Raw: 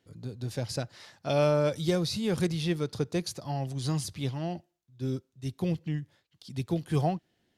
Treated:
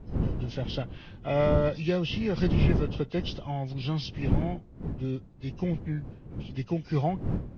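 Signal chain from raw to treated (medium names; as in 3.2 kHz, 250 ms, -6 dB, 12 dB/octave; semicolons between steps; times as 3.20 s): knee-point frequency compression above 1.3 kHz 1.5:1; wind noise 170 Hz -32 dBFS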